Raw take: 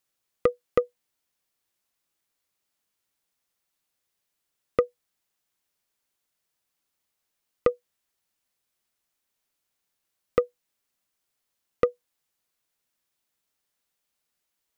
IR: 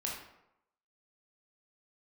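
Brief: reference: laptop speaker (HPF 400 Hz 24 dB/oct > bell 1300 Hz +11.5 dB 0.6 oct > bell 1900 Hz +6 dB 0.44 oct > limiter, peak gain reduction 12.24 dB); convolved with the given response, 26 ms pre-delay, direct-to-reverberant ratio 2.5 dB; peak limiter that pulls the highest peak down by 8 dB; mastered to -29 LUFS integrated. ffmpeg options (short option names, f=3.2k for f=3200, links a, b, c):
-filter_complex "[0:a]alimiter=limit=-15dB:level=0:latency=1,asplit=2[a][b];[1:a]atrim=start_sample=2205,adelay=26[c];[b][c]afir=irnorm=-1:irlink=0,volume=-4.5dB[d];[a][d]amix=inputs=2:normalize=0,highpass=f=400:w=0.5412,highpass=f=400:w=1.3066,equalizer=f=1.3k:t=o:w=0.6:g=11.5,equalizer=f=1.9k:t=o:w=0.44:g=6,volume=10dB,alimiter=limit=-14dB:level=0:latency=1"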